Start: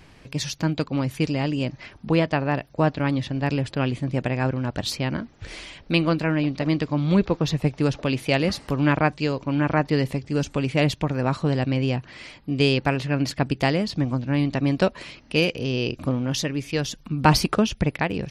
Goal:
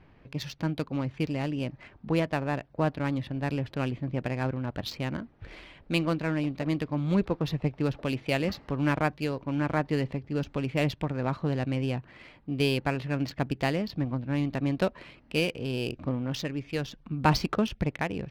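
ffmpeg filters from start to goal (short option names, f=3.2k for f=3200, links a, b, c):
-af "lowpass=6.1k,adynamicsmooth=sensitivity=4:basefreq=2.3k,volume=-6dB"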